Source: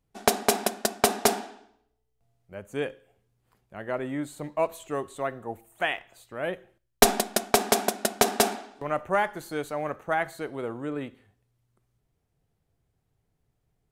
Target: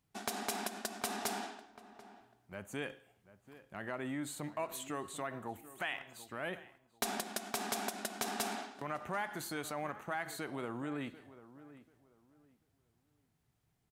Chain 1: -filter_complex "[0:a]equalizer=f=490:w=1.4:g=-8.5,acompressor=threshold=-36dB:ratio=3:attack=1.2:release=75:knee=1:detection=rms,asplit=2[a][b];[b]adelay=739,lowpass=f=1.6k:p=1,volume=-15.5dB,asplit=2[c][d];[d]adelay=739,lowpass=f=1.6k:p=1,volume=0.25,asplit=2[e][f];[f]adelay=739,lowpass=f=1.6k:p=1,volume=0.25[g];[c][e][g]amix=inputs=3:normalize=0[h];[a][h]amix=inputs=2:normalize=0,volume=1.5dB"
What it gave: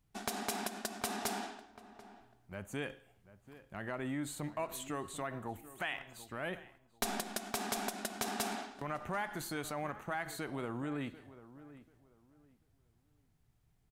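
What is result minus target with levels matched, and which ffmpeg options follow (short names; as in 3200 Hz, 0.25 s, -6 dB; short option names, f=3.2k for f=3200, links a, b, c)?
125 Hz band +3.0 dB
-filter_complex "[0:a]equalizer=f=490:w=1.4:g=-8.5,acompressor=threshold=-36dB:ratio=3:attack=1.2:release=75:knee=1:detection=rms,highpass=f=160:p=1,asplit=2[a][b];[b]adelay=739,lowpass=f=1.6k:p=1,volume=-15.5dB,asplit=2[c][d];[d]adelay=739,lowpass=f=1.6k:p=1,volume=0.25,asplit=2[e][f];[f]adelay=739,lowpass=f=1.6k:p=1,volume=0.25[g];[c][e][g]amix=inputs=3:normalize=0[h];[a][h]amix=inputs=2:normalize=0,volume=1.5dB"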